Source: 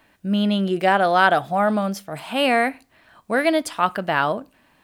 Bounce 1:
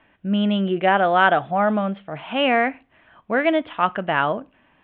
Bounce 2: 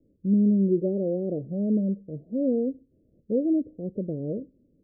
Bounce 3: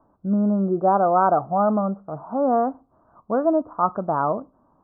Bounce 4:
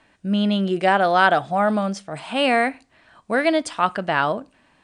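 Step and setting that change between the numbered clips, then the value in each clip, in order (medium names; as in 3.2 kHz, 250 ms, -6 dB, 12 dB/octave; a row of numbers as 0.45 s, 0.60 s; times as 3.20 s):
steep low-pass, frequency: 3.4 kHz, 520 Hz, 1.3 kHz, 9.5 kHz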